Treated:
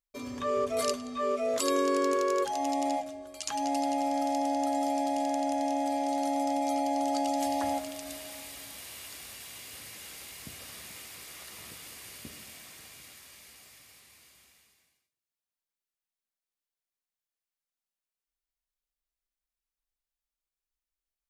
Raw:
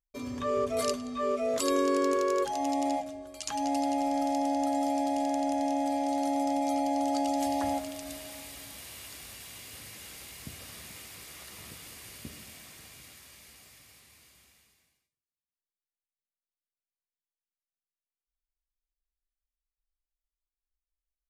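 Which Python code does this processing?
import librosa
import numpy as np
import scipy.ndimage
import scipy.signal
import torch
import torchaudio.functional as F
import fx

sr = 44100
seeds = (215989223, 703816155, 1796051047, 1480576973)

y = fx.low_shelf(x, sr, hz=230.0, db=-7.0)
y = F.gain(torch.from_numpy(y), 1.0).numpy()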